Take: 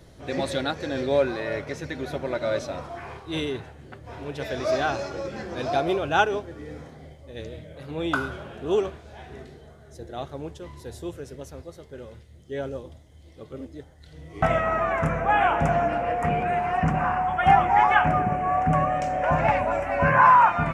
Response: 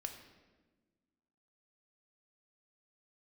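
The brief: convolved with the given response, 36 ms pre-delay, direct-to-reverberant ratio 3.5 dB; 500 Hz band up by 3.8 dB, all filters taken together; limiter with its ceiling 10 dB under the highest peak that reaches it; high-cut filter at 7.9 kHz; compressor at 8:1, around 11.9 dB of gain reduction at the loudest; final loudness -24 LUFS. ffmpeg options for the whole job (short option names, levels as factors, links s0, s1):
-filter_complex "[0:a]lowpass=7900,equalizer=f=500:t=o:g=5,acompressor=threshold=0.0708:ratio=8,alimiter=limit=0.1:level=0:latency=1,asplit=2[s0][s1];[1:a]atrim=start_sample=2205,adelay=36[s2];[s1][s2]afir=irnorm=-1:irlink=0,volume=0.891[s3];[s0][s3]amix=inputs=2:normalize=0,volume=1.78"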